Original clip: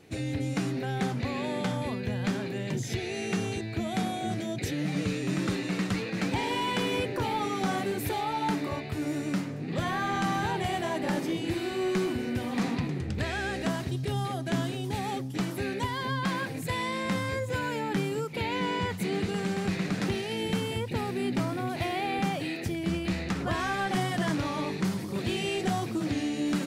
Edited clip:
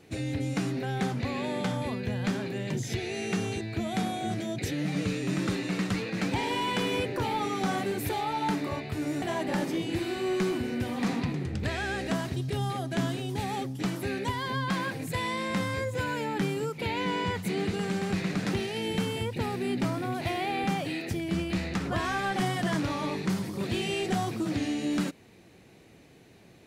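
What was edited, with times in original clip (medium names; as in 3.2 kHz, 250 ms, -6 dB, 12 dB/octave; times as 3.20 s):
9.22–10.77 s: delete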